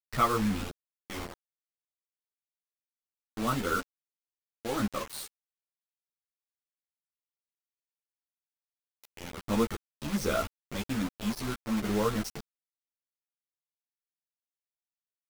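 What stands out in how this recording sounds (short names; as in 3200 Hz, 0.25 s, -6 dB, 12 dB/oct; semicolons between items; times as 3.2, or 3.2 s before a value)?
random-step tremolo 1.6 Hz, depth 70%; a quantiser's noise floor 6-bit, dither none; a shimmering, thickened sound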